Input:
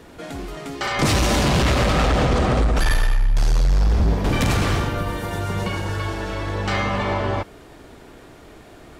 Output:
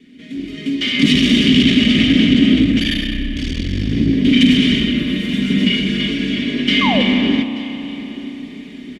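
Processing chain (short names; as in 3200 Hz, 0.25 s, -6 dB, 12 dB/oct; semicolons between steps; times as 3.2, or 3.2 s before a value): minimum comb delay 4.8 ms; dynamic EQ 3100 Hz, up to +7 dB, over -45 dBFS, Q 3.5; AGC gain up to 12 dB; vowel filter i; bell 1200 Hz -8.5 dB 2.3 oct; comb 1.1 ms, depth 32%; echo 0.882 s -19 dB; painted sound fall, 6.81–7.02, 470–1200 Hz -35 dBFS; spring tank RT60 3.7 s, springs 32 ms, chirp 65 ms, DRR 8 dB; maximiser +16 dB; gain -1 dB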